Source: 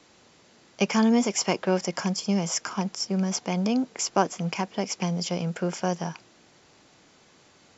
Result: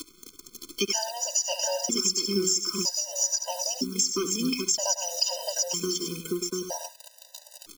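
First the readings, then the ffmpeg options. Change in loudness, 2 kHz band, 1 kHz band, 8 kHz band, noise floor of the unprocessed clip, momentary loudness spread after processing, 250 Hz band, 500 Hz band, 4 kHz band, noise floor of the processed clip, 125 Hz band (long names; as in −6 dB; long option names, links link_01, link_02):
+0.5 dB, −6.0 dB, −7.0 dB, can't be measured, −58 dBFS, 19 LU, −7.5 dB, −2.5 dB, +6.5 dB, −56 dBFS, −11.0 dB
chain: -filter_complex "[0:a]acrossover=split=120[link_01][link_02];[link_02]acompressor=mode=upward:threshold=-35dB:ratio=2.5[link_03];[link_01][link_03]amix=inputs=2:normalize=0,afftdn=noise_reduction=20:noise_floor=-39,acrusher=bits=9:dc=4:mix=0:aa=0.000001,highshelf=frequency=3400:gain=-8.5,aecho=1:1:3.2:0.62,asplit=2[link_04][link_05];[link_05]aecho=0:1:70|264|691|793:0.282|0.15|0.631|0.251[link_06];[link_04][link_06]amix=inputs=2:normalize=0,aexciter=amount=14.6:drive=5.1:freq=3100,equalizer=frequency=400:width=1.3:gain=6,alimiter=limit=-1.5dB:level=0:latency=1:release=156,acompressor=threshold=-33dB:ratio=2.5,aeval=exprs='sgn(val(0))*max(abs(val(0))-0.00355,0)':channel_layout=same,afftfilt=real='re*gt(sin(2*PI*0.52*pts/sr)*(1-2*mod(floor(b*sr/1024/510),2)),0)':imag='im*gt(sin(2*PI*0.52*pts/sr)*(1-2*mod(floor(b*sr/1024/510),2)),0)':win_size=1024:overlap=0.75,volume=6dB"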